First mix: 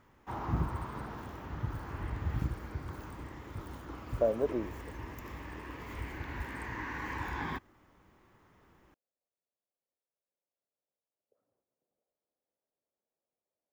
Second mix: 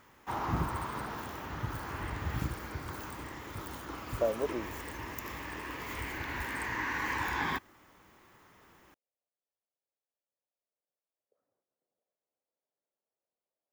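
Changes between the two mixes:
background +5.0 dB
master: add spectral tilt +2 dB per octave

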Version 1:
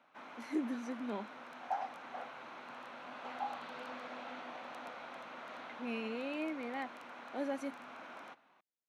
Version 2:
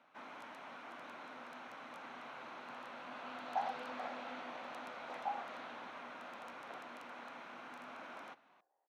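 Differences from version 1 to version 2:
speech: muted
second sound: entry +1.85 s

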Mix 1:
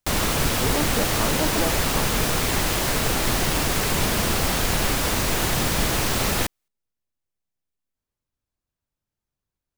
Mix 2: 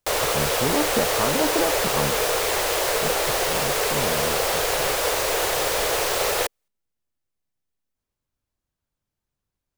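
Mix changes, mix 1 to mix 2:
speech +3.0 dB
background: add low shelf with overshoot 330 Hz −12.5 dB, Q 3

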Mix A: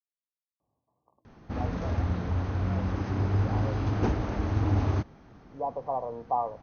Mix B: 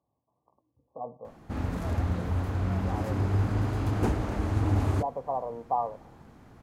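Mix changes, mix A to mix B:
speech: entry −0.60 s
master: remove linear-phase brick-wall low-pass 6,500 Hz

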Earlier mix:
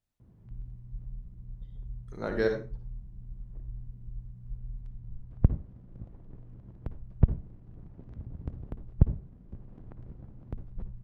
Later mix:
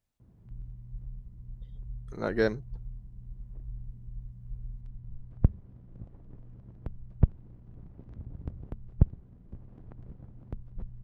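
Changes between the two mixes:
speech +4.5 dB
reverb: off

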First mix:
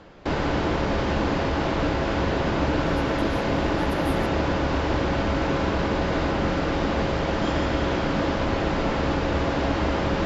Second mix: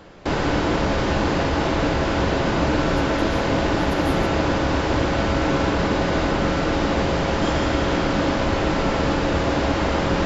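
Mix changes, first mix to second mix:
background: remove high-frequency loss of the air 65 metres
reverb: on, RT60 1.2 s

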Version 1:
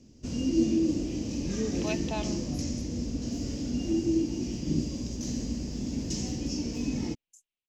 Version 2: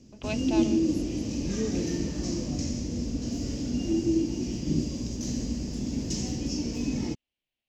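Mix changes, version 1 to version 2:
speech: entry −1.60 s
reverb: on, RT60 1.7 s

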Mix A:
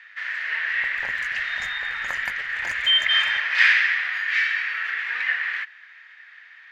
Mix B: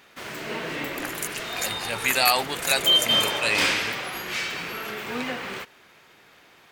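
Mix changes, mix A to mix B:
speech: unmuted
first sound: remove high-pass with resonance 1,800 Hz, resonance Q 8.1
master: remove high-frequency loss of the air 190 metres

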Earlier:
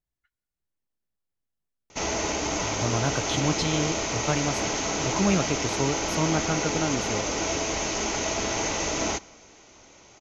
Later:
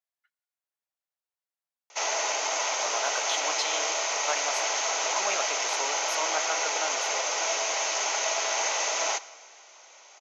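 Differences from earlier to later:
background: send +7.0 dB
master: add high-pass filter 590 Hz 24 dB per octave

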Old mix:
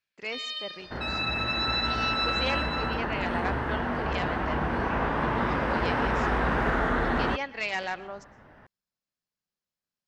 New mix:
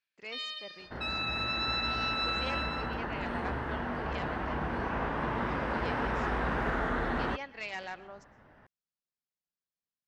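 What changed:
speech −8.5 dB
first sound: send −11.0 dB
second sound −5.5 dB

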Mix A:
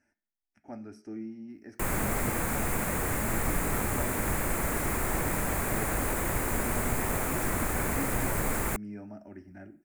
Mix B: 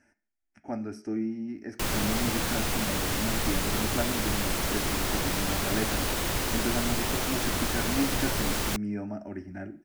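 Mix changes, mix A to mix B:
speech +8.5 dB
background: add flat-topped bell 4,100 Hz +14.5 dB 1.3 octaves

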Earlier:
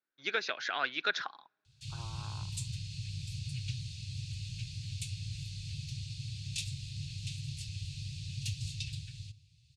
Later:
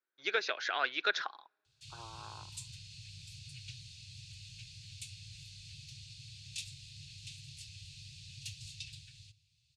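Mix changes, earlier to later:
background −4.0 dB
master: add low shelf with overshoot 290 Hz −8 dB, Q 1.5

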